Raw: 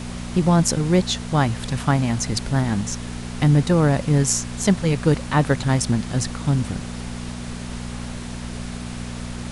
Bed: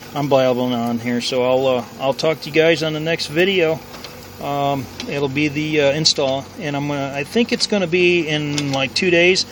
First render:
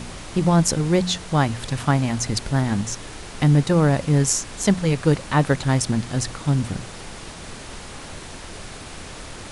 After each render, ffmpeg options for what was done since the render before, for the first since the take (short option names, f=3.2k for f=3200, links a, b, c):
-af "bandreject=f=60:t=h:w=4,bandreject=f=120:t=h:w=4,bandreject=f=180:t=h:w=4,bandreject=f=240:t=h:w=4"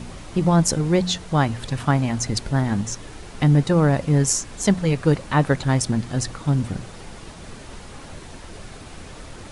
-af "afftdn=nr=6:nf=-37"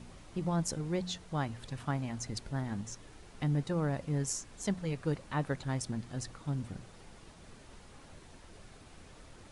-af "volume=-15dB"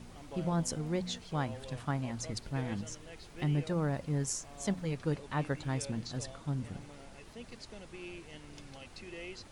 -filter_complex "[1:a]volume=-32dB[a];[0:a][a]amix=inputs=2:normalize=0"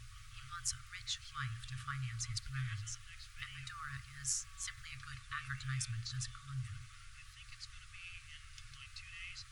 -af "bandreject=f=88.64:t=h:w=4,bandreject=f=177.28:t=h:w=4,bandreject=f=265.92:t=h:w=4,bandreject=f=354.56:t=h:w=4,bandreject=f=443.2:t=h:w=4,bandreject=f=531.84:t=h:w=4,bandreject=f=620.48:t=h:w=4,bandreject=f=709.12:t=h:w=4,bandreject=f=797.76:t=h:w=4,bandreject=f=886.4:t=h:w=4,bandreject=f=975.04:t=h:w=4,bandreject=f=1.06368k:t=h:w=4,bandreject=f=1.15232k:t=h:w=4,bandreject=f=1.24096k:t=h:w=4,bandreject=f=1.3296k:t=h:w=4,bandreject=f=1.41824k:t=h:w=4,bandreject=f=1.50688k:t=h:w=4,bandreject=f=1.59552k:t=h:w=4,bandreject=f=1.68416k:t=h:w=4,bandreject=f=1.7728k:t=h:w=4,bandreject=f=1.86144k:t=h:w=4,bandreject=f=1.95008k:t=h:w=4,bandreject=f=2.03872k:t=h:w=4,bandreject=f=2.12736k:t=h:w=4,bandreject=f=2.216k:t=h:w=4,bandreject=f=2.30464k:t=h:w=4,bandreject=f=2.39328k:t=h:w=4,bandreject=f=2.48192k:t=h:w=4,bandreject=f=2.57056k:t=h:w=4,afftfilt=real='re*(1-between(b*sr/4096,130,1100))':imag='im*(1-between(b*sr/4096,130,1100))':win_size=4096:overlap=0.75"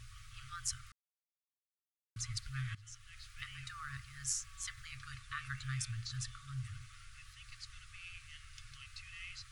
-filter_complex "[0:a]asplit=4[a][b][c][d];[a]atrim=end=0.92,asetpts=PTS-STARTPTS,afade=t=out:st=0.916:d=0.004:c=hsin[e];[b]atrim=start=0.92:end=2.16,asetpts=PTS-STARTPTS,volume=0[f];[c]atrim=start=2.16:end=2.75,asetpts=PTS-STARTPTS,afade=t=in:d=0.004:c=hsin,afade=t=out:st=0.586:d=0.004:c=hsin:silence=0.149624[g];[d]atrim=start=2.75,asetpts=PTS-STARTPTS,afade=t=in:d=0.5:silence=0.149624[h];[e][f][g][h]concat=n=4:v=0:a=1"